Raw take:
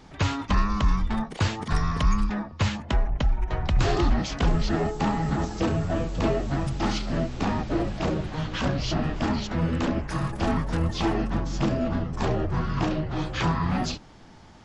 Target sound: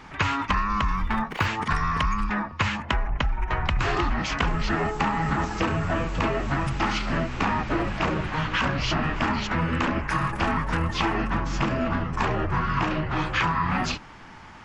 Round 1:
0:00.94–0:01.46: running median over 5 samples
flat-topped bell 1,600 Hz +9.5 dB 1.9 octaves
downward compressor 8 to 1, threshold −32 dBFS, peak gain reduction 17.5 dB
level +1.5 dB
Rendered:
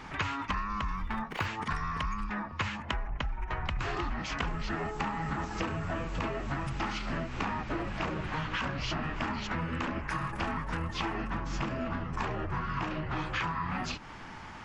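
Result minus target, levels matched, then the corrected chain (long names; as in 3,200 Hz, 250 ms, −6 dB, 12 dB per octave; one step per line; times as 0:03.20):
downward compressor: peak gain reduction +9 dB
0:00.94–0:01.46: running median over 5 samples
flat-topped bell 1,600 Hz +9.5 dB 1.9 octaves
downward compressor 8 to 1, threshold −21.5 dBFS, peak gain reduction 8.5 dB
level +1.5 dB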